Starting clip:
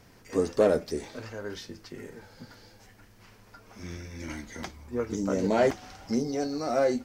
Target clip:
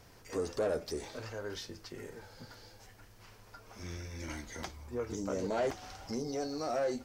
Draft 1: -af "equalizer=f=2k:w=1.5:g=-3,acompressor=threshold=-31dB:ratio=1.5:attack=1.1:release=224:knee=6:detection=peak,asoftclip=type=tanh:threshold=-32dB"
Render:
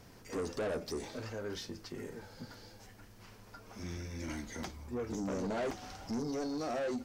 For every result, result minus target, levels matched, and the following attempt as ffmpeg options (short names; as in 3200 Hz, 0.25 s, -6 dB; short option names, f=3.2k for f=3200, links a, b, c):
soft clip: distortion +8 dB; 250 Hz band +3.5 dB
-af "equalizer=f=2k:w=1.5:g=-3,acompressor=threshold=-31dB:ratio=1.5:attack=1.1:release=224:knee=6:detection=peak,asoftclip=type=tanh:threshold=-25dB"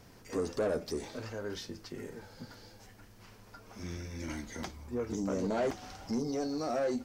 250 Hz band +3.0 dB
-af "equalizer=f=2k:w=1.5:g=-3,acompressor=threshold=-31dB:ratio=1.5:attack=1.1:release=224:knee=6:detection=peak,equalizer=f=220:w=1.2:g=-7,asoftclip=type=tanh:threshold=-25dB"